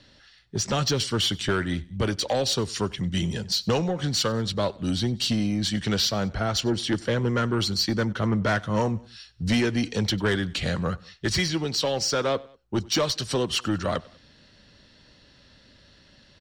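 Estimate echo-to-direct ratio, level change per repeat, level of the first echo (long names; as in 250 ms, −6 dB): −22.5 dB, −5.5 dB, −23.5 dB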